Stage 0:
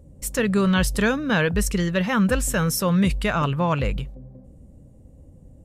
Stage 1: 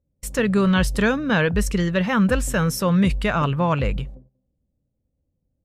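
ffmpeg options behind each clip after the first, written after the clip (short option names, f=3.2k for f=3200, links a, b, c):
-af "agate=range=-28dB:threshold=-37dB:ratio=16:detection=peak,highshelf=f=6.1k:g=-7.5,volume=1.5dB"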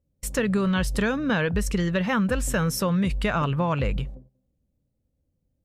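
-af "acompressor=threshold=-20dB:ratio=6"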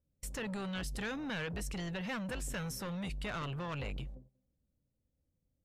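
-filter_complex "[0:a]acrossover=split=2100[a][b];[a]asoftclip=type=tanh:threshold=-30dB[c];[b]alimiter=level_in=3dB:limit=-24dB:level=0:latency=1:release=87,volume=-3dB[d];[c][d]amix=inputs=2:normalize=0,volume=-7.5dB"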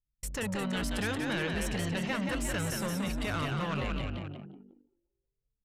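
-filter_complex "[0:a]aeval=exprs='0.0335*(cos(1*acos(clip(val(0)/0.0335,-1,1)))-cos(1*PI/2))+0.00133*(cos(3*acos(clip(val(0)/0.0335,-1,1)))-cos(3*PI/2))':c=same,asplit=9[a][b][c][d][e][f][g][h][i];[b]adelay=178,afreqshift=49,volume=-4.5dB[j];[c]adelay=356,afreqshift=98,volume=-9.5dB[k];[d]adelay=534,afreqshift=147,volume=-14.6dB[l];[e]adelay=712,afreqshift=196,volume=-19.6dB[m];[f]adelay=890,afreqshift=245,volume=-24.6dB[n];[g]adelay=1068,afreqshift=294,volume=-29.7dB[o];[h]adelay=1246,afreqshift=343,volume=-34.7dB[p];[i]adelay=1424,afreqshift=392,volume=-39.8dB[q];[a][j][k][l][m][n][o][p][q]amix=inputs=9:normalize=0,anlmdn=0.00631,volume=5.5dB"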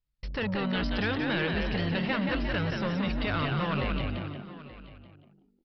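-af "aecho=1:1:879:0.133,aresample=11025,aresample=44100,volume=3.5dB"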